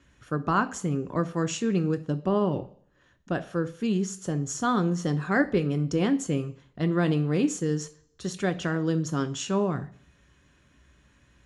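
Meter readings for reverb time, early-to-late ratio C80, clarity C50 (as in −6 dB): 0.55 s, 20.5 dB, 17.5 dB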